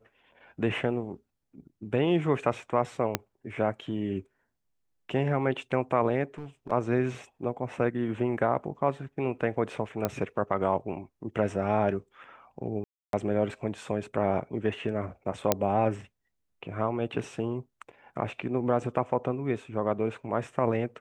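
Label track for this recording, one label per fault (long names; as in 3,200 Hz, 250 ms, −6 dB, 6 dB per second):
3.150000	3.150000	click −9 dBFS
6.380000	6.720000	clipping −33.5 dBFS
10.050000	10.050000	click −13 dBFS
12.840000	13.130000	drop-out 292 ms
15.520000	15.520000	click −6 dBFS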